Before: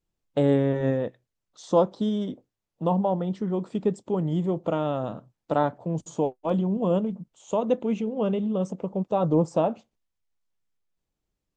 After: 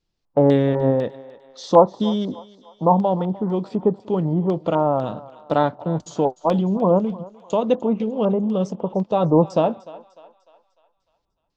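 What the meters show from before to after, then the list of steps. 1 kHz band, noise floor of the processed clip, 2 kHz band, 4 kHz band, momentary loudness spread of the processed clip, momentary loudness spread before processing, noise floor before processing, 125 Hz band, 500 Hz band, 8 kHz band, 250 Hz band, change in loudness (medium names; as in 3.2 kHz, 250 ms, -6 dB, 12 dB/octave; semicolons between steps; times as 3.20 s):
+8.0 dB, -74 dBFS, +4.0 dB, +7.0 dB, 9 LU, 9 LU, -84 dBFS, +4.5 dB, +6.0 dB, no reading, +5.0 dB, +5.5 dB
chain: LFO low-pass square 2 Hz 940–4800 Hz; thinning echo 300 ms, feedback 51%, high-pass 560 Hz, level -17 dB; trim +4.5 dB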